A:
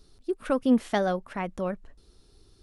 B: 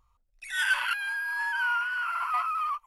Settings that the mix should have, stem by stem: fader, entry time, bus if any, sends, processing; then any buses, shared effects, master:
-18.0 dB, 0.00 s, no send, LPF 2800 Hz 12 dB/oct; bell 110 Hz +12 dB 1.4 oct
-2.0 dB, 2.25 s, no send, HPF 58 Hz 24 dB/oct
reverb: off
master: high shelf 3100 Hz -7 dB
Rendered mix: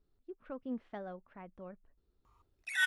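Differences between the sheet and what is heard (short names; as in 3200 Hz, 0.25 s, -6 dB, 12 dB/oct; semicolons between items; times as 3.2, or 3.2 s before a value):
stem A: missing bell 110 Hz +12 dB 1.4 oct; stem B -2.0 dB -> +4.0 dB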